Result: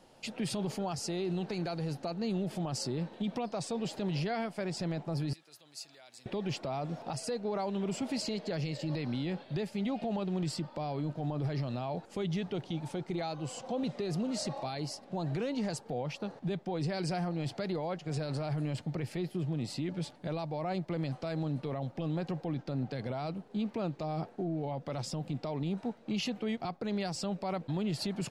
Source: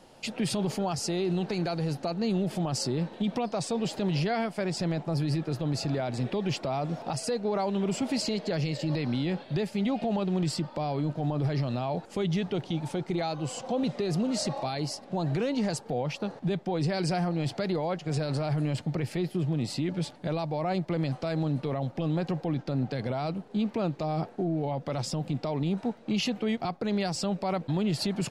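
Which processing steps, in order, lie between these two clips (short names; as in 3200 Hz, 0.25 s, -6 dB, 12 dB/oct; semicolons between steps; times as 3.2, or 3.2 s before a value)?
5.33–6.26 differentiator; gain -5.5 dB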